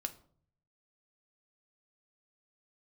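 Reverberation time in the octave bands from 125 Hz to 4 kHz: 1.0 s, 0.70 s, 0.60 s, 0.50 s, 0.35 s, 0.35 s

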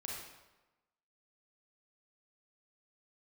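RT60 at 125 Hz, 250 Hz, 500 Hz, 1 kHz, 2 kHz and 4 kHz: 1.0 s, 1.1 s, 1.1 s, 1.1 s, 0.95 s, 0.80 s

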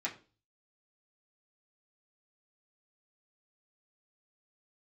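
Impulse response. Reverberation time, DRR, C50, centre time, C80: 0.35 s, -6.0 dB, 13.5 dB, 14 ms, 18.5 dB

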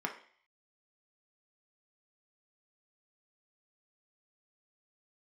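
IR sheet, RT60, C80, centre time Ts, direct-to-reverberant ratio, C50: 0.50 s, 14.0 dB, 14 ms, 2.0 dB, 10.0 dB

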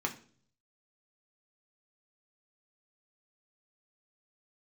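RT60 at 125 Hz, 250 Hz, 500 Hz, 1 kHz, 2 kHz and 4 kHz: 0.90 s, 0.65 s, 0.55 s, 0.40 s, 0.40 s, 0.45 s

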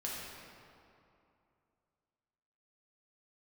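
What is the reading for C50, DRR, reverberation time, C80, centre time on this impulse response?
-2.0 dB, -5.5 dB, 2.7 s, 0.0 dB, 136 ms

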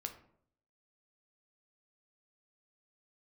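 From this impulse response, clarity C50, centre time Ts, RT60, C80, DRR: 11.0 dB, 11 ms, 0.65 s, 14.5 dB, 5.0 dB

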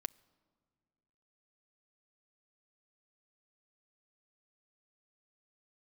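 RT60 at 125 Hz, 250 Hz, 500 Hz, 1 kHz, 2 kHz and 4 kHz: 2.4 s, 2.3 s, 2.0 s, 1.8 s, 1.3 s, 1.0 s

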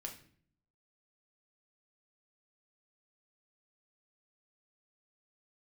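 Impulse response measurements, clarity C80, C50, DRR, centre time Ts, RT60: 14.5 dB, 10.0 dB, 1.5 dB, 17 ms, 0.55 s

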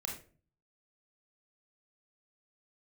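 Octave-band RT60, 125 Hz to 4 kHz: 0.70 s, 0.60 s, 0.45 s, 0.35 s, 0.35 s, 0.25 s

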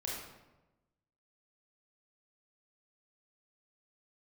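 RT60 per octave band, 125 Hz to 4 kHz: 1.3 s, 1.2 s, 1.1 s, 1.0 s, 0.85 s, 0.65 s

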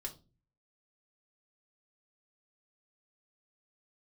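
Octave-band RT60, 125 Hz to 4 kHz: 0.70 s, 0.55 s, 0.40 s, 0.25 s, 0.20 s, 0.25 s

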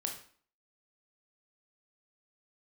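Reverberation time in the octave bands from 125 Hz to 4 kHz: 0.40 s, 0.55 s, 0.45 s, 0.50 s, 0.45 s, 0.40 s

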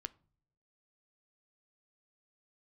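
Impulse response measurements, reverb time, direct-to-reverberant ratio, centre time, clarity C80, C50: no single decay rate, 13.5 dB, 1 ms, 27.5 dB, 23.0 dB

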